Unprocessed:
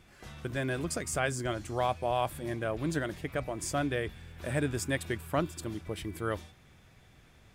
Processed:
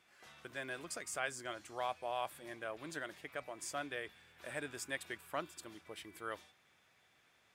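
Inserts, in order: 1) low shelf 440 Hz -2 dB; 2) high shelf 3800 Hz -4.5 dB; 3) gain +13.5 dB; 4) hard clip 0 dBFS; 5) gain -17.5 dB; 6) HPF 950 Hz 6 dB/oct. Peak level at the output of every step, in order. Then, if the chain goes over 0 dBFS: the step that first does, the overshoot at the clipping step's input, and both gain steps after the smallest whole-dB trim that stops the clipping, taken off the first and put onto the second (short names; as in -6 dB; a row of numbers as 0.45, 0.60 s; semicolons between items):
-17.0, -17.5, -4.0, -4.0, -21.5, -23.0 dBFS; no overload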